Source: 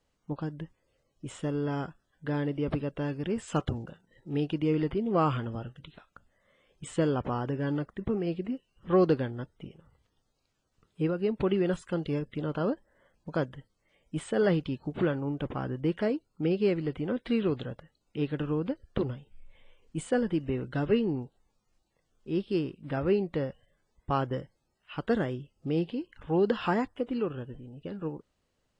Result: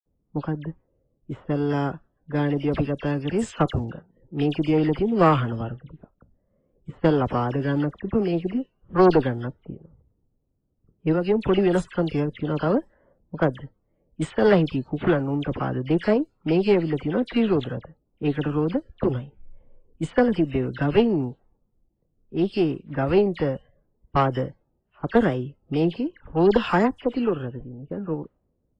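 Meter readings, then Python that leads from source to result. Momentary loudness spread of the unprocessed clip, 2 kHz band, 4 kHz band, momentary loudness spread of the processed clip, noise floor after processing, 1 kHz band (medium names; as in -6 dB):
14 LU, +8.0 dB, +7.0 dB, 14 LU, -72 dBFS, +8.5 dB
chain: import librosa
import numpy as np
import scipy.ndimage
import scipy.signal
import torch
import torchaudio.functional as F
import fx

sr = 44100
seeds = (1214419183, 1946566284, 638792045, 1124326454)

y = fx.dispersion(x, sr, late='lows', ms=60.0, hz=2300.0)
y = fx.env_lowpass(y, sr, base_hz=330.0, full_db=-26.5)
y = fx.cheby_harmonics(y, sr, harmonics=(2,), levels_db=(-9,), full_scale_db=-12.0)
y = y * 10.0 ** (7.5 / 20.0)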